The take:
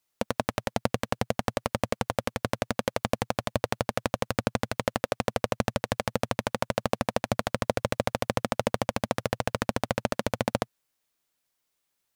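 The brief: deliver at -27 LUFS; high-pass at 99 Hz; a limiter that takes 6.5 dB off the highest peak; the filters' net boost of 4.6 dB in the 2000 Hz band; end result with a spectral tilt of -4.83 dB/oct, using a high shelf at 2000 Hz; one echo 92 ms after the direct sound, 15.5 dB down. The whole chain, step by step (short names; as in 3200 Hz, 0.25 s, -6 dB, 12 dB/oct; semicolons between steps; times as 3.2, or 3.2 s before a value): HPF 99 Hz; high shelf 2000 Hz -3 dB; bell 2000 Hz +7.5 dB; limiter -10.5 dBFS; echo 92 ms -15.5 dB; gain +6.5 dB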